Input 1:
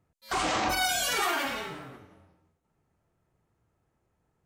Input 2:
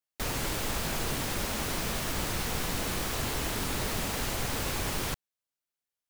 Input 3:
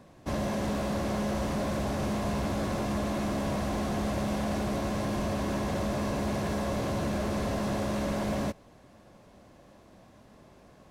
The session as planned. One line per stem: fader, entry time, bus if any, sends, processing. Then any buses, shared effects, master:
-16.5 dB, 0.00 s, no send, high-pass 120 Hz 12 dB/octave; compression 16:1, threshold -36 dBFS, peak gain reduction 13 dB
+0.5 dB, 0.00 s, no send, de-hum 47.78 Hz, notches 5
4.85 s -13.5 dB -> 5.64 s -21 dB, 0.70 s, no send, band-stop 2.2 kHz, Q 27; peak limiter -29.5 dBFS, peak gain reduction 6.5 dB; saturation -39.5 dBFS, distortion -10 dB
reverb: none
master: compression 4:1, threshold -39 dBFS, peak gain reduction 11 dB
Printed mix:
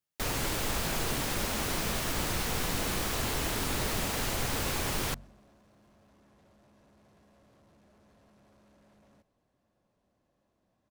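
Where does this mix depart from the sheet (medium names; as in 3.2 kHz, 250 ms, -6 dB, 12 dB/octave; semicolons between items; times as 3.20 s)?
stem 1 -16.5 dB -> -25.5 dB; master: missing compression 4:1, threshold -39 dBFS, peak gain reduction 11 dB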